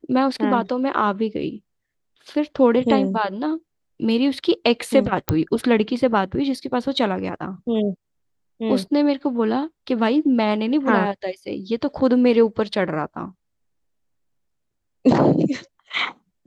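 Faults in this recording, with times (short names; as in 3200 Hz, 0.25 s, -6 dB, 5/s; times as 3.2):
5.29 pop -5 dBFS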